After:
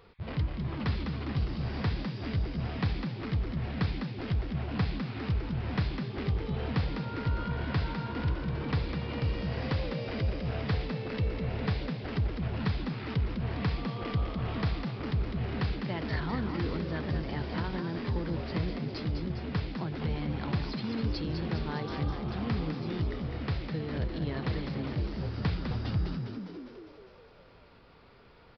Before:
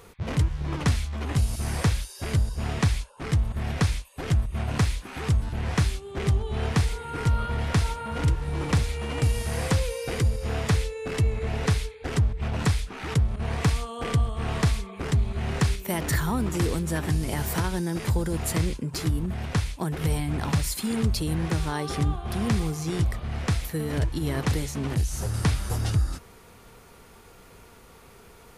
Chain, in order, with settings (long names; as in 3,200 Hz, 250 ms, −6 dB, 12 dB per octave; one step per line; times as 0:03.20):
downsampling to 11,025 Hz
echo with shifted repeats 203 ms, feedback 59%, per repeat +65 Hz, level −6.5 dB
level −7.5 dB